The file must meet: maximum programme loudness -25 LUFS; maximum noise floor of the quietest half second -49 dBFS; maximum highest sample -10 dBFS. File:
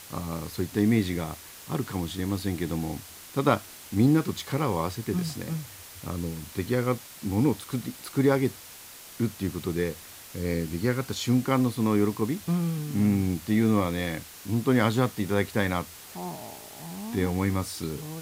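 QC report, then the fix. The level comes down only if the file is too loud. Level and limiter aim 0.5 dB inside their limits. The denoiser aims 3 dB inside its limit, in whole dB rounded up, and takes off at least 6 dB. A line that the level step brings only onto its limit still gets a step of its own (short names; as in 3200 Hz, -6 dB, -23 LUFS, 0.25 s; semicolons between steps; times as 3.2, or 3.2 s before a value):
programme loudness -28.0 LUFS: OK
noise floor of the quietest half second -46 dBFS: fail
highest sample -8.5 dBFS: fail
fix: denoiser 6 dB, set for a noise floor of -46 dBFS; limiter -10.5 dBFS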